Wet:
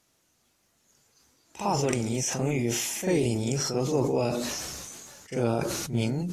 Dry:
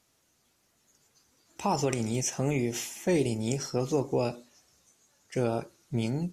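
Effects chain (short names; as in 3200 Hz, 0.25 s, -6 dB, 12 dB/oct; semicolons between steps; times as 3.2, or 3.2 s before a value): reverse echo 43 ms -7.5 dB; sustainer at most 25 dB/s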